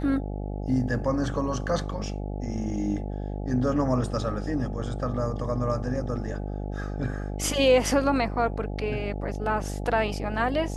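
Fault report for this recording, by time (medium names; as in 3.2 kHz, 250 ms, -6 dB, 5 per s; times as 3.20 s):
buzz 50 Hz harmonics 17 -32 dBFS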